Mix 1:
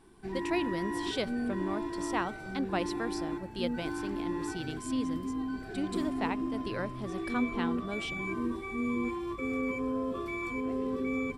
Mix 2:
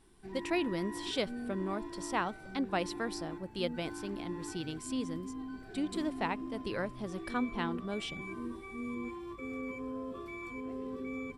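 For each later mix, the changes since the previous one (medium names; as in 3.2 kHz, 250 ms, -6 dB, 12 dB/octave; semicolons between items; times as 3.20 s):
background -7.5 dB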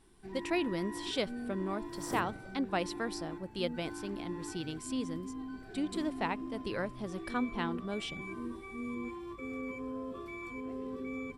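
second sound: unmuted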